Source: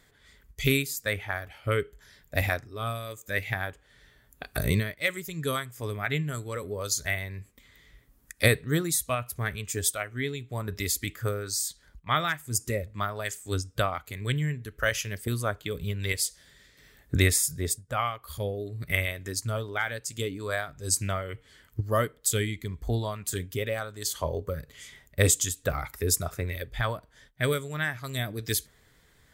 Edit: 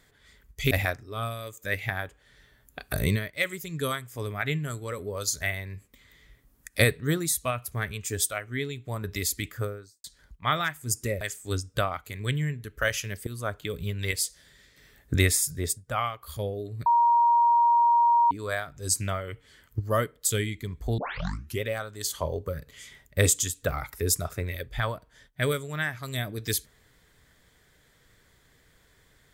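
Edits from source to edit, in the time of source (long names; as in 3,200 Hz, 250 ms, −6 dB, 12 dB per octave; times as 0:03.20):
0:00.71–0:02.35: remove
0:11.14–0:11.68: fade out and dull
0:12.85–0:13.22: remove
0:15.28–0:15.56: fade in, from −13 dB
0:18.87–0:20.32: beep over 943 Hz −17 dBFS
0:22.99: tape start 0.62 s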